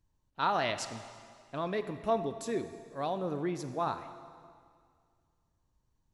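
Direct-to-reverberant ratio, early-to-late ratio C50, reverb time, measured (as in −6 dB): 9.5 dB, 10.5 dB, 2.1 s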